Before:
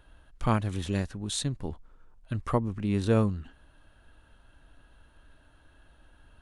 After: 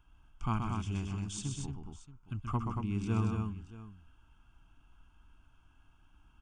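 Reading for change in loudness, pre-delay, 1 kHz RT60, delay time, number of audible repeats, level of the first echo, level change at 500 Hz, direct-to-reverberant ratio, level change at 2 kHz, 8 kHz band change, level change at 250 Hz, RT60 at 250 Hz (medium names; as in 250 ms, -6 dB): -6.5 dB, no reverb, no reverb, 128 ms, 3, -5.0 dB, -15.0 dB, no reverb, -8.0 dB, -6.0 dB, -6.0 dB, no reverb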